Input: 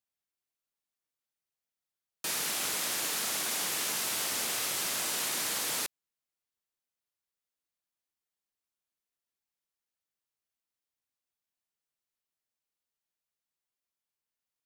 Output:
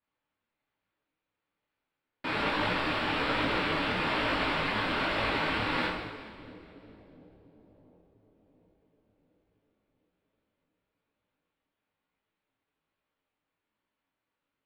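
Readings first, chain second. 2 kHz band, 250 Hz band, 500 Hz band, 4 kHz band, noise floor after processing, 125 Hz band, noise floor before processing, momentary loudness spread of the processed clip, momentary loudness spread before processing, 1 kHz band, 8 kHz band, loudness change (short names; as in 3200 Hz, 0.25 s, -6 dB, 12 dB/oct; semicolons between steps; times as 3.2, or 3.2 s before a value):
+7.5 dB, +14.0 dB, +10.5 dB, -0.5 dB, under -85 dBFS, +16.0 dB, under -85 dBFS, 11 LU, 2 LU, +10.0 dB, -27.0 dB, +1.0 dB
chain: bell 300 Hz +12 dB 0.45 oct; in parallel at -2 dB: limiter -25.5 dBFS, peak gain reduction 7 dB; on the sum: sample-and-hold 7×; air absorption 210 m; on a send: split-band echo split 570 Hz, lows 0.7 s, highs 0.211 s, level -14.5 dB; on the sum: two-slope reverb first 0.81 s, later 2.6 s, DRR -3 dB; detuned doubles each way 40 cents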